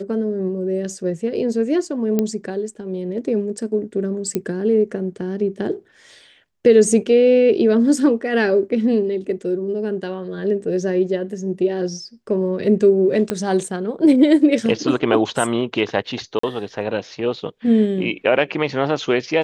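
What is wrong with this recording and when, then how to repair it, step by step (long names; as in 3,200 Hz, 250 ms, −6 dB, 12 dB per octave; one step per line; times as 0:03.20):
0:02.19: click −7 dBFS
0:04.35: click −9 dBFS
0:13.30: click −7 dBFS
0:16.39–0:16.43: drop-out 44 ms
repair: click removal
repair the gap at 0:16.39, 44 ms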